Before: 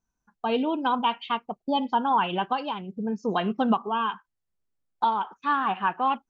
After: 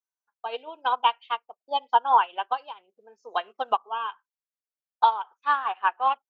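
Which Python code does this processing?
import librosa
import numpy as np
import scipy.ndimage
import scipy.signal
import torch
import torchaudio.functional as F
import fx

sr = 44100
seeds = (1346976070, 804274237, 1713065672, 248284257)

y = scipy.signal.sosfilt(scipy.signal.butter(4, 490.0, 'highpass', fs=sr, output='sos'), x)
y = fx.upward_expand(y, sr, threshold_db=-32.0, expansion=2.5)
y = y * librosa.db_to_amplitude(6.0)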